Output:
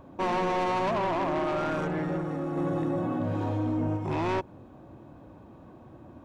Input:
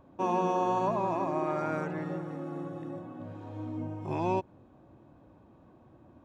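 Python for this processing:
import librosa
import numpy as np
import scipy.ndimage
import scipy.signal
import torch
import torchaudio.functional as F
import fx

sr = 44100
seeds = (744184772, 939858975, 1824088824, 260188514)

y = 10.0 ** (-32.5 / 20.0) * np.tanh(x / 10.0 ** (-32.5 / 20.0))
y = fx.env_flatten(y, sr, amount_pct=70, at=(2.56, 3.96), fade=0.02)
y = y * 10.0 ** (8.0 / 20.0)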